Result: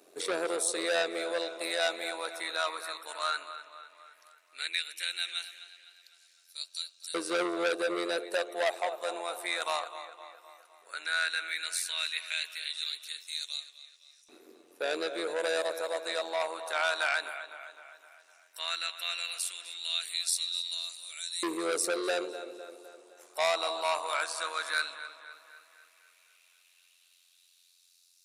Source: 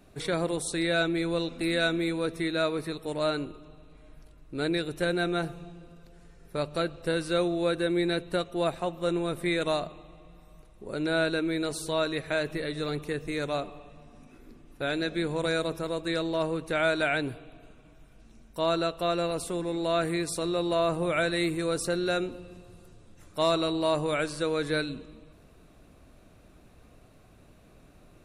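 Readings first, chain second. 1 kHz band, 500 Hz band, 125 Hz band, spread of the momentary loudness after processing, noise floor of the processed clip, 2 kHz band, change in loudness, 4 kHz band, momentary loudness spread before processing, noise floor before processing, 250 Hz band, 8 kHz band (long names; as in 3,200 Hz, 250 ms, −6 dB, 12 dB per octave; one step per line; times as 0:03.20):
−2.0 dB, −6.0 dB, below −30 dB, 15 LU, −65 dBFS, −0.5 dB, −3.5 dB, +2.0 dB, 8 LU, −56 dBFS, −13.0 dB, +5.0 dB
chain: bass and treble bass −11 dB, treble +8 dB
amplitude modulation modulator 88 Hz, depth 50%
auto-filter high-pass saw up 0.14 Hz 350–5,600 Hz
tape delay 255 ms, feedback 56%, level −12.5 dB, low-pass 4,900 Hz
saturating transformer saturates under 3,100 Hz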